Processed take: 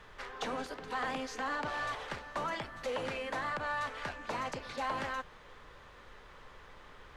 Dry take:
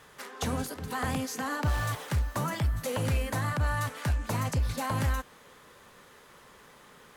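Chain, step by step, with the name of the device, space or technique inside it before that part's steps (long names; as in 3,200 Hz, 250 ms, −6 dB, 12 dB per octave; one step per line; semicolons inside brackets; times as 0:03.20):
aircraft cabin announcement (band-pass filter 380–3,900 Hz; soft clipping −27.5 dBFS, distortion −18 dB; brown noise bed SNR 17 dB)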